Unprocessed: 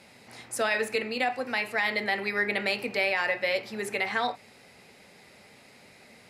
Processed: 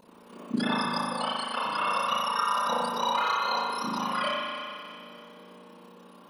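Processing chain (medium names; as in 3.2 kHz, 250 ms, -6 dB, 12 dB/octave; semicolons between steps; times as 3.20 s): spectrum inverted on a logarithmic axis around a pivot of 1.5 kHz; flange 0.93 Hz, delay 0.1 ms, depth 4.6 ms, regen -57%; AM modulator 33 Hz, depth 90%; on a send: echo whose repeats swap between lows and highs 153 ms, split 1.8 kHz, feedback 69%, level -12 dB; on the sum: spring tank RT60 2.3 s, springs 38 ms, chirp 80 ms, DRR -5.5 dB; 2.57–3.35 s: overload inside the chain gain 23 dB; trim +4.5 dB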